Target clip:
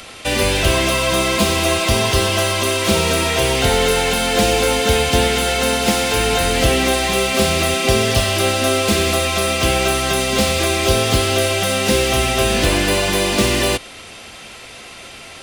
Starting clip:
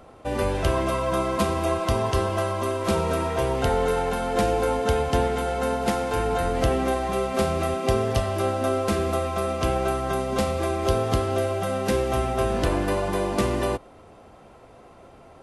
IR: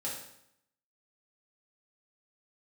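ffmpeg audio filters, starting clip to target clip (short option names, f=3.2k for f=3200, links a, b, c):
-filter_complex "[0:a]equalizer=f=220:w=8:g=3,acrossover=split=350|990|2100[a][b][c][d];[c]acompressor=threshold=-44dB:ratio=6[e];[d]asplit=2[f][g];[g]highpass=f=720:p=1,volume=30dB,asoftclip=type=tanh:threshold=-18.5dB[h];[f][h]amix=inputs=2:normalize=0,lowpass=f=6.8k:p=1,volume=-6dB[i];[a][b][e][i]amix=inputs=4:normalize=0,volume=6dB"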